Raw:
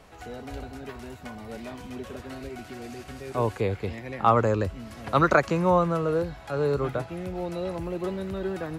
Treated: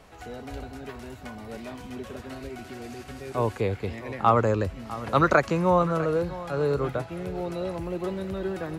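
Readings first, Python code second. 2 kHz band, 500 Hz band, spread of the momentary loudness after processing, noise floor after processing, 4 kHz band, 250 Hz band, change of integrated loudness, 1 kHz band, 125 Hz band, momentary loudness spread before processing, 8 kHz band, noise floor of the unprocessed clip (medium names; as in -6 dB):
0.0 dB, 0.0 dB, 18 LU, -45 dBFS, 0.0 dB, 0.0 dB, 0.0 dB, 0.0 dB, 0.0 dB, 18 LU, 0.0 dB, -46 dBFS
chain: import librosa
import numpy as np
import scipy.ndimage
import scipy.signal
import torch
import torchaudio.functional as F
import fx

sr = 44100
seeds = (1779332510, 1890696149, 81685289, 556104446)

y = x + 10.0 ** (-16.0 / 20.0) * np.pad(x, (int(651 * sr / 1000.0), 0))[:len(x)]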